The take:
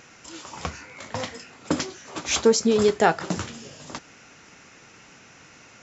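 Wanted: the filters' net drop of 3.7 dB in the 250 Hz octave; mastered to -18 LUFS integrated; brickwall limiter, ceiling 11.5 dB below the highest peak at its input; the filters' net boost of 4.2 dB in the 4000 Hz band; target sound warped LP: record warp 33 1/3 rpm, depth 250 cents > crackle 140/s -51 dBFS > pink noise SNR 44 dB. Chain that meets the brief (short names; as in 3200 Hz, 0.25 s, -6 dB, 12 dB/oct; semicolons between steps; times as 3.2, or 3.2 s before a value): bell 250 Hz -4.5 dB; bell 4000 Hz +5.5 dB; limiter -16 dBFS; record warp 33 1/3 rpm, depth 250 cents; crackle 140/s -51 dBFS; pink noise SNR 44 dB; gain +12 dB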